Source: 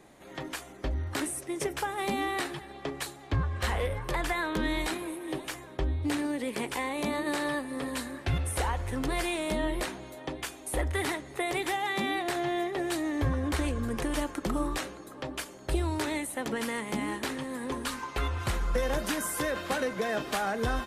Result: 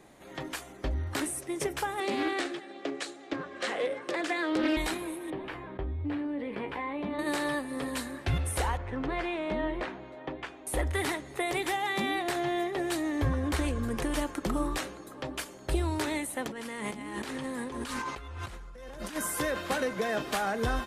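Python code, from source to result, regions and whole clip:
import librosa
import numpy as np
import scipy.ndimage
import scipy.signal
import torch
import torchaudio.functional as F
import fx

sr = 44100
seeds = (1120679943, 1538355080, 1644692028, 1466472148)

y = fx.chain(x, sr, fx.cabinet(low_hz=230.0, low_slope=24, high_hz=8400.0, hz=(310.0, 560.0, 940.0), db=(7, 4, -9)),
    fx.hum_notches(base_hz=60, count=7),
    fx.doppler_dist(depth_ms=0.28), at=(2.0, 4.77))
y = fx.chain(y, sr, fx.air_absorb(metres=440.0),
    fx.comb_fb(f0_hz=95.0, decay_s=0.15, harmonics='all', damping=0.0, mix_pct=80),
    fx.env_flatten(amount_pct=50), at=(5.3, 7.19))
y = fx.chain(y, sr, fx.lowpass(hz=2400.0, slope=12),
    fx.low_shelf(hz=150.0, db=-6.0), at=(8.77, 10.67))
y = fx.chain(y, sr, fx.peak_eq(hz=13000.0, db=-6.5, octaves=0.24),
    fx.over_compress(threshold_db=-39.0, ratio=-1.0), at=(16.47, 19.16))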